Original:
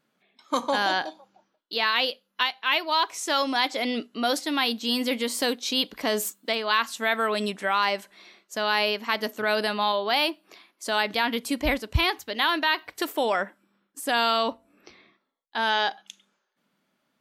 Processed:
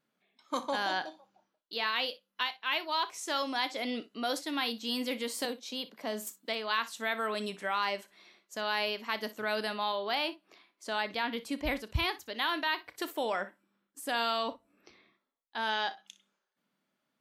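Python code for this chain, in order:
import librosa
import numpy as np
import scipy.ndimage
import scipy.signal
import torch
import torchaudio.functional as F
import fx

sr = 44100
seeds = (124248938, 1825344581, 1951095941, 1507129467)

y = fx.cheby_ripple_highpass(x, sr, hz=160.0, ripple_db=6, at=(5.45, 6.27))
y = fx.high_shelf(y, sr, hz=8100.0, db=-10.5, at=(10.15, 11.66))
y = fx.room_early_taps(y, sr, ms=(32, 60), db=(-16.5, -17.0))
y = F.gain(torch.from_numpy(y), -8.0).numpy()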